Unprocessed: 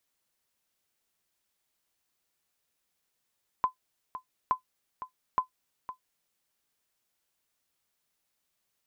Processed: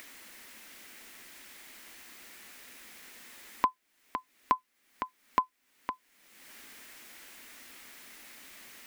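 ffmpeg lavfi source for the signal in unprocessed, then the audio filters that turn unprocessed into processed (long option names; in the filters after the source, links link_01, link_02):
-f lavfi -i "aevalsrc='0.158*(sin(2*PI*1020*mod(t,0.87))*exp(-6.91*mod(t,0.87)/0.11)+0.224*sin(2*PI*1020*max(mod(t,0.87)-0.51,0))*exp(-6.91*max(mod(t,0.87)-0.51,0)/0.11))':duration=2.61:sample_rate=44100"
-af "acompressor=mode=upward:threshold=-31dB:ratio=2.5,equalizer=frequency=125:width_type=o:width=1:gain=-12,equalizer=frequency=250:width_type=o:width=1:gain=11,equalizer=frequency=2000:width_type=o:width=1:gain=10"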